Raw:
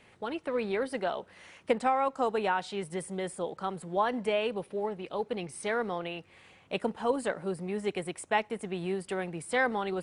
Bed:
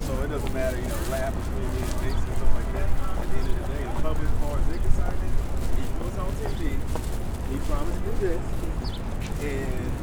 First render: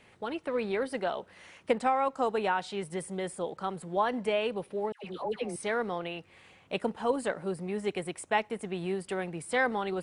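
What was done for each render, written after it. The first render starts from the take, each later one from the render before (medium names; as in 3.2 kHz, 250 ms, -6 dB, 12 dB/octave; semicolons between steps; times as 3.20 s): 4.92–5.56 s: phase dispersion lows, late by 122 ms, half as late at 990 Hz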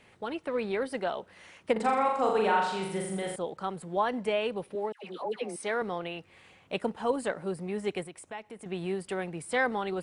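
1.72–3.36 s: flutter echo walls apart 7.1 m, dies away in 0.79 s; 4.75–5.82 s: high-pass 220 Hz; 8.03–8.66 s: compression 2:1, threshold -47 dBFS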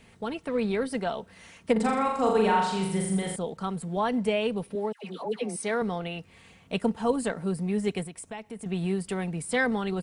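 tone controls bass +10 dB, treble +6 dB; comb 4.4 ms, depth 35%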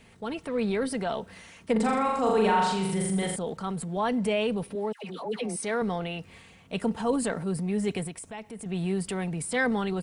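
transient shaper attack -3 dB, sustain +5 dB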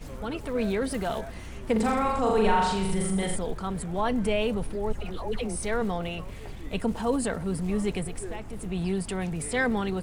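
add bed -12 dB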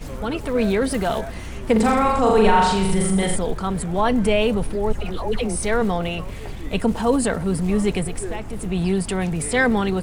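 trim +7.5 dB; peak limiter -3 dBFS, peak gain reduction 2 dB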